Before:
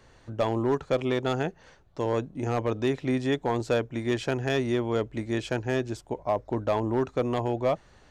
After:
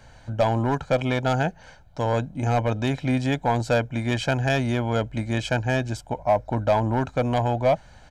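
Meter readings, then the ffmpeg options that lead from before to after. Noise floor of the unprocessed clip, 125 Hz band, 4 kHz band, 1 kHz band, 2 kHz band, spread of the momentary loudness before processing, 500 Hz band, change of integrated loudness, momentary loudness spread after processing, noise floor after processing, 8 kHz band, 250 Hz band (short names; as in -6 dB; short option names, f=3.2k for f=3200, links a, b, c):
-57 dBFS, +8.0 dB, +4.5 dB, +7.0 dB, +6.5 dB, 5 LU, +2.5 dB, +4.0 dB, 5 LU, -50 dBFS, +5.0 dB, +2.5 dB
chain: -filter_complex "[0:a]aecho=1:1:1.3:0.67,asplit=2[a][b];[b]asoftclip=type=hard:threshold=-23.5dB,volume=-9dB[c];[a][c]amix=inputs=2:normalize=0,volume=2dB"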